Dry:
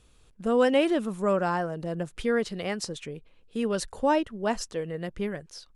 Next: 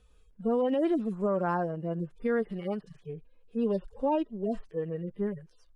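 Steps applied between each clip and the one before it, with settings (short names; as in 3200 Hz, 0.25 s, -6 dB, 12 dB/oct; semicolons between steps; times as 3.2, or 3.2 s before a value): median-filter separation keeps harmonic; high shelf 2700 Hz -8.5 dB; limiter -20 dBFS, peak gain reduction 7.5 dB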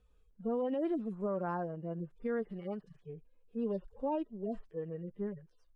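high shelf 2700 Hz -8.5 dB; gain -6.5 dB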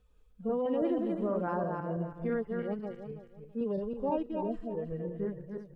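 regenerating reverse delay 0.164 s, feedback 49%, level -3.5 dB; gain +2 dB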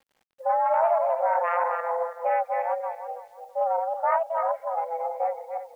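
self-modulated delay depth 0.15 ms; mistuned SSB +340 Hz 160–2000 Hz; requantised 12-bit, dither none; gain +8 dB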